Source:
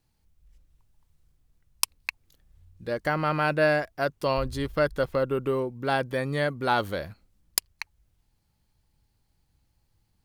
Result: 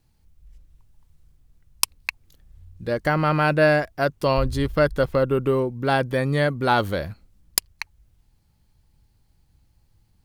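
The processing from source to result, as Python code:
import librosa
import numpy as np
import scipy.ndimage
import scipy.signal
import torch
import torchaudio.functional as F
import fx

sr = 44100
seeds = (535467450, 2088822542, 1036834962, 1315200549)

y = fx.low_shelf(x, sr, hz=230.0, db=5.5)
y = y * librosa.db_to_amplitude(4.0)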